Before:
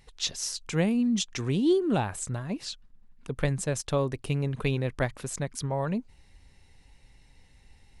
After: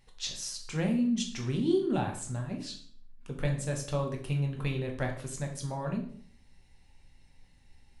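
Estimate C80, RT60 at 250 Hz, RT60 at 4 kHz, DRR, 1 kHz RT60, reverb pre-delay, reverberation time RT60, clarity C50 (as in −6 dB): 12.0 dB, 0.65 s, 0.45 s, 1.5 dB, 0.50 s, 4 ms, 0.55 s, 8.0 dB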